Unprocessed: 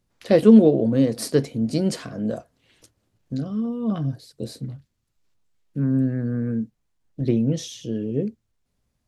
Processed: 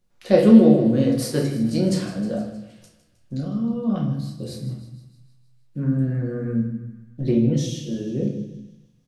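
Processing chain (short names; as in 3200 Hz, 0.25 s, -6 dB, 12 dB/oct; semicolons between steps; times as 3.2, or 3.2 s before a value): notch 440 Hz, Q 12; doubler 33 ms -11.5 dB; on a send: thinning echo 0.156 s, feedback 59%, high-pass 640 Hz, level -13 dB; on the sum: shoebox room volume 150 m³, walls mixed, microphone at 0.97 m; gain -2.5 dB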